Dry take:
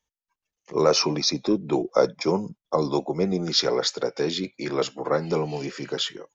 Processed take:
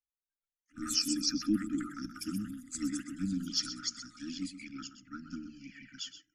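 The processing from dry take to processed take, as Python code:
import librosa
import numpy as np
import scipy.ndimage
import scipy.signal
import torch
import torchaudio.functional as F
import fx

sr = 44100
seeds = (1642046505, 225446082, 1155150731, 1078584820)

y = fx.peak_eq(x, sr, hz=3400.0, db=5.0, octaves=0.49)
y = fx.env_phaser(y, sr, low_hz=440.0, high_hz=2100.0, full_db=-24.5)
y = fx.fixed_phaser(y, sr, hz=770.0, stages=8)
y = fx.env_flanger(y, sr, rest_ms=3.2, full_db=-21.5)
y = fx.echo_pitch(y, sr, ms=217, semitones=6, count=2, db_per_echo=-6.0)
y = fx.brickwall_bandstop(y, sr, low_hz=310.0, high_hz=1200.0)
y = y + 10.0 ** (-10.5 / 20.0) * np.pad(y, (int(127 * sr / 1000.0), 0))[:len(y)]
y = fx.band_widen(y, sr, depth_pct=40)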